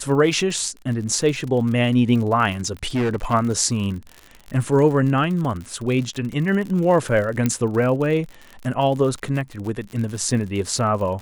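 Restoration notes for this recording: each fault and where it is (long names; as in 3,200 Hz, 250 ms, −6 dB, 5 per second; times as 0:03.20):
surface crackle 61 per second −28 dBFS
0:02.83–0:03.34: clipping −17.5 dBFS
0:07.46: click −7 dBFS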